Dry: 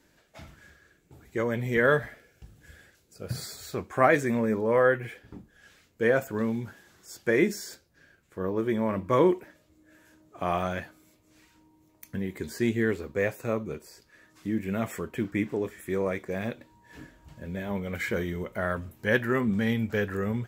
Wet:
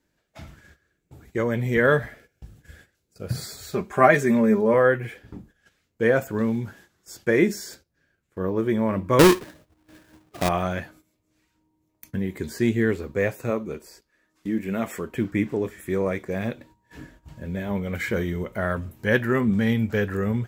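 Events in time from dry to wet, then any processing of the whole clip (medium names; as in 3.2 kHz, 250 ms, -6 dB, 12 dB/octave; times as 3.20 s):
3.73–4.74 s: comb 5 ms, depth 69%
9.19–10.49 s: square wave that keeps the level
13.50–15.14 s: peaking EQ 110 Hz -11.5 dB
whole clip: bass shelf 260 Hz +4 dB; gate -52 dBFS, range -13 dB; trim +2.5 dB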